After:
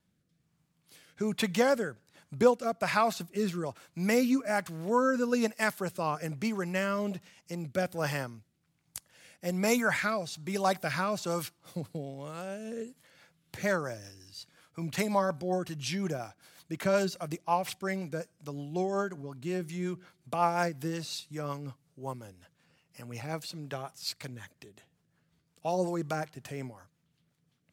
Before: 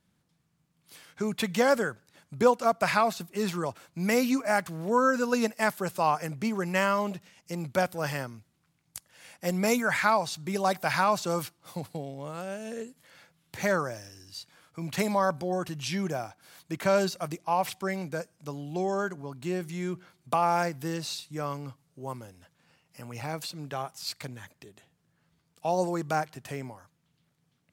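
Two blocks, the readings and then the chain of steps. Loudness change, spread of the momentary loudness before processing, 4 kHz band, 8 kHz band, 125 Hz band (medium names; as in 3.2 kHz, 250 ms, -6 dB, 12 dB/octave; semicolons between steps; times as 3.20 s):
-3.0 dB, 17 LU, -2.5 dB, -2.5 dB, -1.5 dB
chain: rotary cabinet horn 1.2 Hz, later 5.5 Hz, at 12.68 s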